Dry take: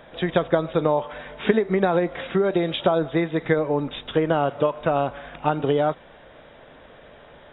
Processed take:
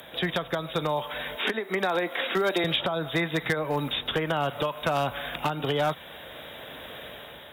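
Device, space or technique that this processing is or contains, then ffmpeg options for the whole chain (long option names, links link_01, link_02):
FM broadcast chain: -filter_complex "[0:a]asettb=1/sr,asplit=3[link_01][link_02][link_03];[link_01]atrim=end=1.354[link_04];[link_02]atrim=start=1.35:end=2.64,asetpts=PTS-STARTPTS,afade=type=in:duration=0.004:curve=qsin,afade=type=out:start_time=1.286:duration=0.004:curve=qsin,highpass=frequency=240:width=0.5412,highpass=frequency=240:width=1.3066[link_05];[link_03]atrim=start=2.636[link_06];[link_04][link_05]acrossfade=duration=0.004:curve1=hsin:curve2=qsin[link_07];[link_07][link_06]acrossfade=duration=0.004:curve1=qsin:curve2=hsin,highpass=frequency=52:width=0.5412,highpass=frequency=52:width=1.3066,dynaudnorm=framelen=700:gausssize=3:maxgain=7dB,acrossover=split=210|680|2200[link_08][link_09][link_10][link_11];[link_08]acompressor=threshold=-27dB:ratio=4[link_12];[link_09]acompressor=threshold=-30dB:ratio=4[link_13];[link_10]acompressor=threshold=-22dB:ratio=4[link_14];[link_11]acompressor=threshold=-43dB:ratio=4[link_15];[link_12][link_13][link_14][link_15]amix=inputs=4:normalize=0,aemphasis=mode=production:type=75fm,alimiter=limit=-14.5dB:level=0:latency=1:release=415,asoftclip=type=hard:threshold=-18dB,lowpass=frequency=15000:width=0.5412,lowpass=frequency=15000:width=1.3066,aemphasis=mode=production:type=75fm"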